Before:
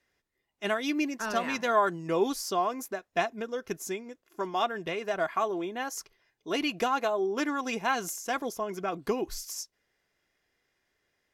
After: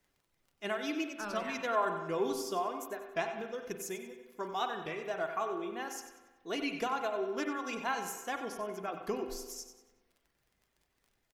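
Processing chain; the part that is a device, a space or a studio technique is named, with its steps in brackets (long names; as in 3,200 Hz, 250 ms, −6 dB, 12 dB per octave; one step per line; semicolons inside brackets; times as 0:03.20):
warped LP (wow of a warped record 33 1/3 rpm, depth 100 cents; surface crackle 24 per second −47 dBFS; pink noise bed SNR 40 dB)
reverb reduction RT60 0.7 s
0:03.69–0:04.77: high-shelf EQ 5,500 Hz +5 dB
repeating echo 94 ms, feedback 36%, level −11 dB
spring reverb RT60 1.3 s, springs 38/43 ms, chirp 40 ms, DRR 7 dB
level −6.5 dB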